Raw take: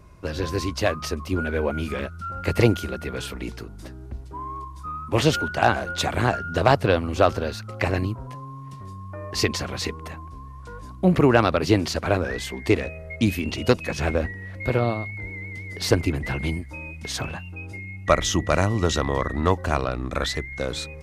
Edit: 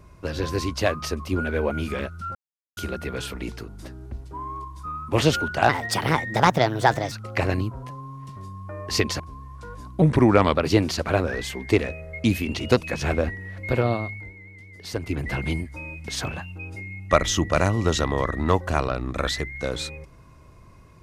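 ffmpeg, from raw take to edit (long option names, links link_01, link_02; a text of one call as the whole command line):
ffmpeg -i in.wav -filter_complex "[0:a]asplit=10[link_01][link_02][link_03][link_04][link_05][link_06][link_07][link_08][link_09][link_10];[link_01]atrim=end=2.35,asetpts=PTS-STARTPTS,afade=type=out:start_time=2.346:duration=0.004:curve=hsin[link_11];[link_02]atrim=start=2.35:end=2.77,asetpts=PTS-STARTPTS,volume=0[link_12];[link_03]atrim=start=2.77:end=5.694,asetpts=PTS-STARTPTS,afade=type=in:duration=0.004:curve=hsin[link_13];[link_04]atrim=start=5.69:end=7.56,asetpts=PTS-STARTPTS,asetrate=57771,aresample=44100[link_14];[link_05]atrim=start=7.556:end=9.642[link_15];[link_06]atrim=start=10.238:end=11.064[link_16];[link_07]atrim=start=11.06:end=11.51,asetpts=PTS-STARTPTS,asetrate=37926,aresample=44100[link_17];[link_08]atrim=start=11.506:end=15.3,asetpts=PTS-STARTPTS,afade=type=out:start_time=3.544:duration=0.25:silence=0.316228[link_18];[link_09]atrim=start=15.3:end=15.97,asetpts=PTS-STARTPTS,volume=-10dB[link_19];[link_10]atrim=start=15.97,asetpts=PTS-STARTPTS,afade=type=in:duration=0.25:silence=0.316228[link_20];[link_11][link_12][link_13]concat=n=3:v=0:a=1[link_21];[link_21][link_14]acrossfade=duration=0.004:curve1=hsin:curve2=hsin[link_22];[link_22][link_15]acrossfade=duration=0.004:curve1=hsin:curve2=hsin[link_23];[link_23][link_16]acrossfade=duration=0.004:curve1=hsin:curve2=hsin[link_24];[link_24][link_17]acrossfade=duration=0.004:curve1=hsin:curve2=hsin[link_25];[link_18][link_19][link_20]concat=n=3:v=0:a=1[link_26];[link_25][link_26]acrossfade=duration=0.004:curve1=hsin:curve2=hsin" out.wav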